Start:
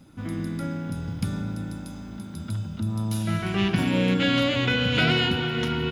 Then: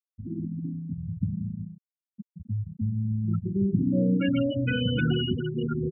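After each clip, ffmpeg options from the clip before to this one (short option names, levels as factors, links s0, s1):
-filter_complex "[0:a]acrossover=split=430[s0][s1];[s1]acompressor=threshold=0.0631:ratio=6[s2];[s0][s2]amix=inputs=2:normalize=0,afftfilt=real='re*gte(hypot(re,im),0.2)':imag='im*gte(hypot(re,im),0.2)':win_size=1024:overlap=0.75"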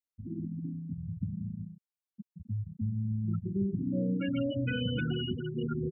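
-af "alimiter=limit=0.133:level=0:latency=1:release=290,volume=0.596"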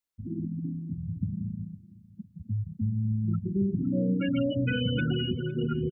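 -af "aecho=1:1:508|1016|1524:0.119|0.0464|0.0181,volume=1.58"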